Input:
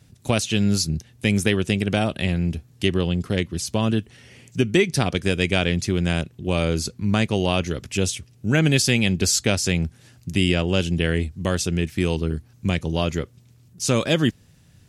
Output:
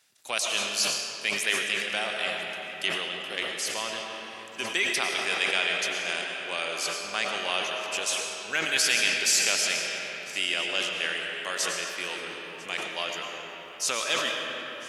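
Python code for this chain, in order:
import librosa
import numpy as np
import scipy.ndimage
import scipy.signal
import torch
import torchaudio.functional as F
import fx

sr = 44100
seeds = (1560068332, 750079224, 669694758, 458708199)

y = scipy.signal.sosfilt(scipy.signal.butter(2, 1000.0, 'highpass', fs=sr, output='sos'), x)
y = y + 10.0 ** (-21.5 / 20.0) * np.pad(y, (int(1000 * sr / 1000.0), 0))[:len(y)]
y = fx.rev_freeverb(y, sr, rt60_s=4.4, hf_ratio=0.55, predelay_ms=70, drr_db=0.0)
y = fx.sustainer(y, sr, db_per_s=44.0)
y = y * 10.0 ** (-2.5 / 20.0)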